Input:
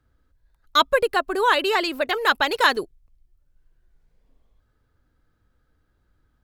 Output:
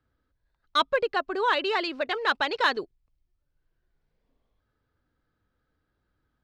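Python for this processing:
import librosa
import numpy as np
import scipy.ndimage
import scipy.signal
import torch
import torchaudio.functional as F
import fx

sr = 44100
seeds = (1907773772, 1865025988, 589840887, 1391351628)

p1 = scipy.signal.sosfilt(scipy.signal.butter(4, 5400.0, 'lowpass', fs=sr, output='sos'), x)
p2 = fx.low_shelf(p1, sr, hz=67.0, db=-11.0)
p3 = np.clip(p2, -10.0 ** (-15.5 / 20.0), 10.0 ** (-15.5 / 20.0))
p4 = p2 + (p3 * 10.0 ** (-11.0 / 20.0))
y = p4 * 10.0 ** (-7.0 / 20.0)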